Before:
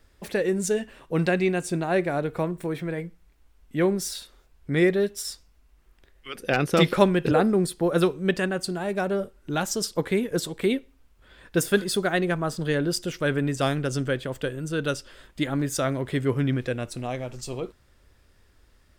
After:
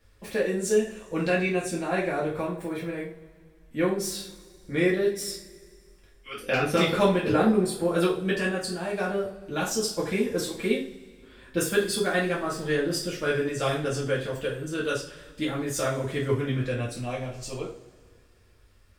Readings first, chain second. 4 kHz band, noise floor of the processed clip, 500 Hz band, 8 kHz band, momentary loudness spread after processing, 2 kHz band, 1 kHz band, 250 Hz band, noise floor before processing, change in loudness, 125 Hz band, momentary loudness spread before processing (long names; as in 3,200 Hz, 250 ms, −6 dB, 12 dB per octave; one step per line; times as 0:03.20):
−1.0 dB, −57 dBFS, −1.0 dB, −0.5 dB, 11 LU, −0.5 dB, −1.5 dB, −2.5 dB, −60 dBFS, −1.5 dB, −3.5 dB, 12 LU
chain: coupled-rooms reverb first 0.35 s, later 2.1 s, from −22 dB, DRR −6.5 dB
level −7.5 dB